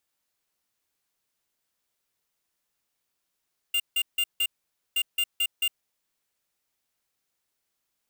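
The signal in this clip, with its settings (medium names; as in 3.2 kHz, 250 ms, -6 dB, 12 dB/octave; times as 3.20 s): beep pattern square 2.8 kHz, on 0.06 s, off 0.16 s, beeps 4, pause 0.50 s, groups 2, -24.5 dBFS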